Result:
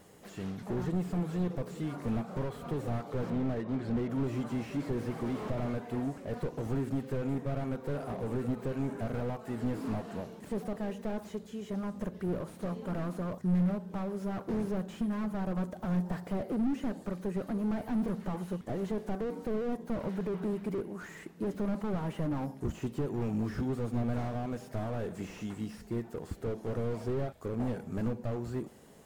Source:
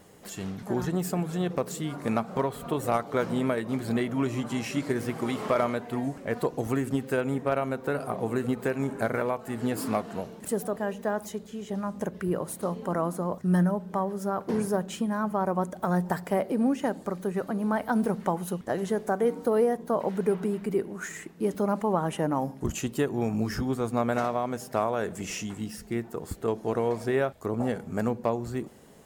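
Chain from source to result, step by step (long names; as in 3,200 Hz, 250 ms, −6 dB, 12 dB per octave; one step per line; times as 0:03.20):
0:03.30–0:04.10: Bessel low-pass filter 3,000 Hz, order 2
slew-rate limiting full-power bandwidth 15 Hz
level −3 dB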